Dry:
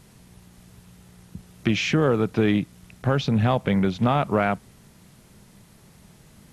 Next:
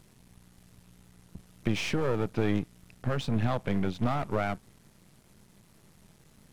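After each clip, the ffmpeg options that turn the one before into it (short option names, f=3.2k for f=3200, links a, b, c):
-af "aeval=exprs='if(lt(val(0),0),0.251*val(0),val(0))':c=same,volume=-4dB"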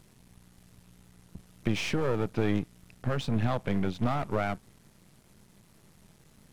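-af anull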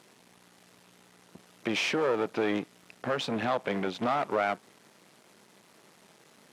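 -filter_complex "[0:a]highpass=370,highshelf=f=8.8k:g=-11.5,asplit=2[a][b];[b]alimiter=level_in=4dB:limit=-24dB:level=0:latency=1:release=86,volume=-4dB,volume=2dB[c];[a][c]amix=inputs=2:normalize=0"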